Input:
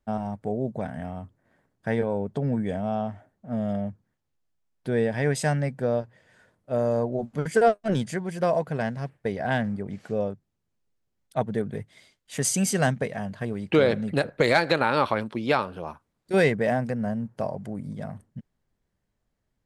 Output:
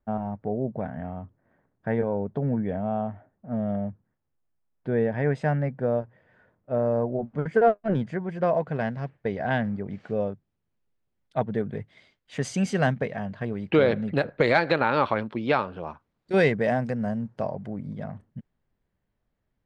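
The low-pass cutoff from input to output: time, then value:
8.18 s 1.8 kHz
8.84 s 3.4 kHz
15.81 s 3.4 kHz
17.11 s 7.3 kHz
17.60 s 3.3 kHz

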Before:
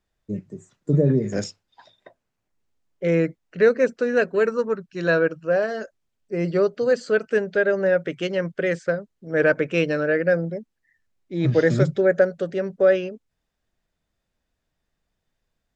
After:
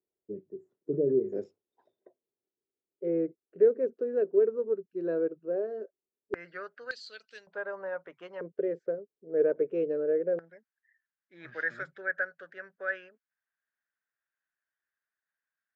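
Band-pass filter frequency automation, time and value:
band-pass filter, Q 5.3
390 Hz
from 6.34 s 1.6 kHz
from 6.91 s 4.1 kHz
from 7.47 s 1 kHz
from 8.41 s 420 Hz
from 10.39 s 1.6 kHz

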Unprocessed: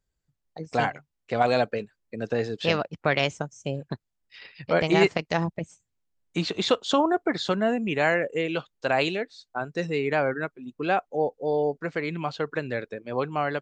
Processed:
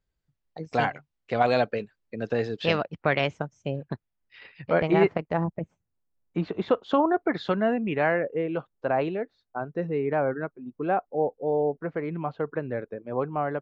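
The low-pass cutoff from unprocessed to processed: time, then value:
2.48 s 4.7 kHz
3.25 s 2.7 kHz
4.48 s 2.7 kHz
5.28 s 1.3 kHz
6.68 s 1.3 kHz
7.17 s 2.5 kHz
7.76 s 2.5 kHz
8.40 s 1.2 kHz

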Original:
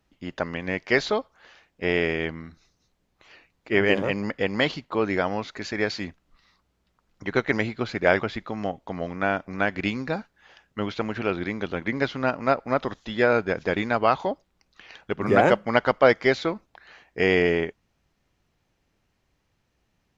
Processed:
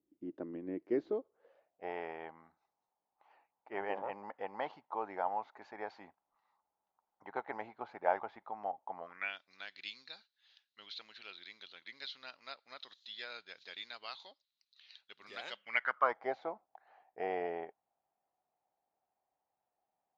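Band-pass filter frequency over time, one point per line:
band-pass filter, Q 6.2
1.07 s 320 Hz
1.93 s 840 Hz
8.98 s 840 Hz
9.40 s 4 kHz
15.51 s 4 kHz
16.21 s 760 Hz

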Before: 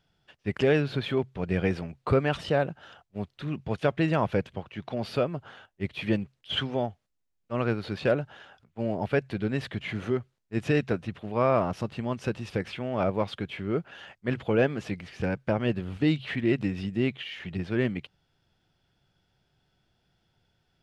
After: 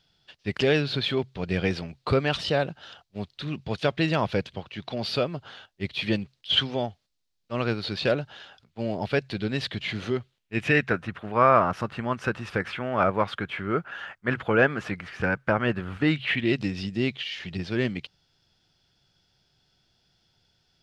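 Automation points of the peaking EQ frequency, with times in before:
peaking EQ +12.5 dB 1.2 oct
10.13 s 4.3 kHz
11.04 s 1.4 kHz
16.07 s 1.4 kHz
16.58 s 4.9 kHz

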